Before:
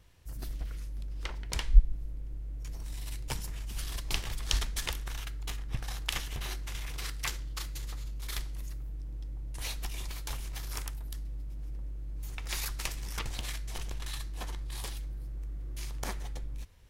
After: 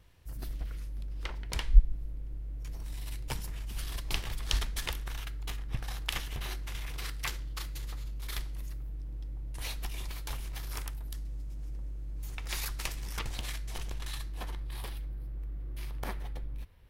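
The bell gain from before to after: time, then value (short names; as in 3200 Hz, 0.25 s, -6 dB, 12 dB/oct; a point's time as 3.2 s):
bell 6900 Hz 1 oct
10.97 s -4.5 dB
11.39 s +5 dB
12.53 s -2.5 dB
14.1 s -2.5 dB
14.83 s -14.5 dB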